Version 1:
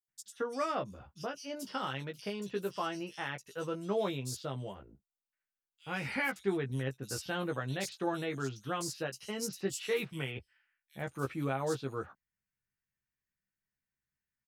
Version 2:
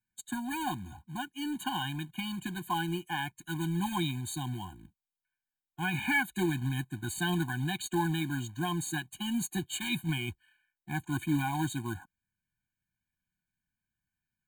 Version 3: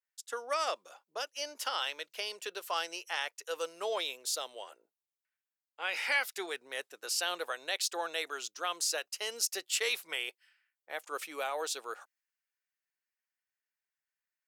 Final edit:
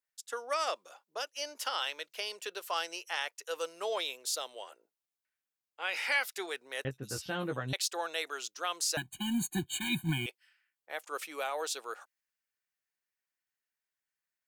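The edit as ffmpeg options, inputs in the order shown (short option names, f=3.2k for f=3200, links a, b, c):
-filter_complex "[2:a]asplit=3[a][b][c];[a]atrim=end=6.852[d];[0:a]atrim=start=6.848:end=7.732[e];[b]atrim=start=7.728:end=8.972[f];[1:a]atrim=start=8.968:end=10.262[g];[c]atrim=start=10.258[h];[d][e]acrossfade=d=0.004:c1=hsin:c2=hsin[i];[i][f]acrossfade=d=0.004:c1=hsin:c2=hsin[j];[j][g]acrossfade=d=0.004:c1=hsin:c2=hsin[k];[k][h]acrossfade=d=0.004:c1=hsin:c2=hsin"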